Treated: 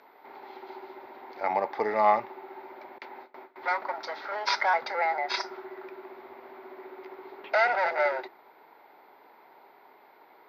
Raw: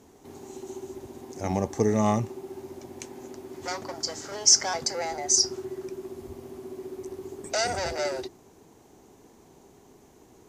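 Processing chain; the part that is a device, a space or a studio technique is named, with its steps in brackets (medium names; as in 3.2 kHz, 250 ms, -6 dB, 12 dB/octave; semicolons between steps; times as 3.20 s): toy sound module (decimation joined by straight lines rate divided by 4×; class-D stage that switches slowly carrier 12 kHz; cabinet simulation 570–4100 Hz, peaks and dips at 600 Hz +5 dB, 900 Hz +10 dB, 1.4 kHz +9 dB, 2.1 kHz +10 dB, 3 kHz -6 dB); 2.98–3.56 s: gate with hold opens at -34 dBFS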